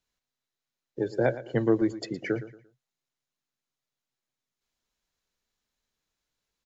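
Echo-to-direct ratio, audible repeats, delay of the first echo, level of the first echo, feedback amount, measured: −14.5 dB, 2, 115 ms, −15.0 dB, 31%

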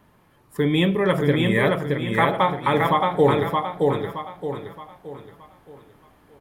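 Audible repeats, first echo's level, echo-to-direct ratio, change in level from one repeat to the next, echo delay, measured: 4, −3.0 dB, −2.5 dB, −8.5 dB, 621 ms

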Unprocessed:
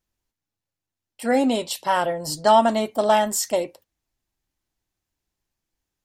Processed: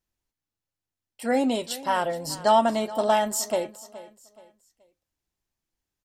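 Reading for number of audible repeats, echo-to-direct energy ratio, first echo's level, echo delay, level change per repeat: 2, −17.0 dB, −17.5 dB, 424 ms, −9.5 dB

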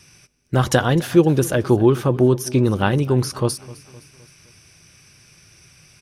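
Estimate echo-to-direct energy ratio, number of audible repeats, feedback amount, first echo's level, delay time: −19.0 dB, 3, 50%, −20.0 dB, 258 ms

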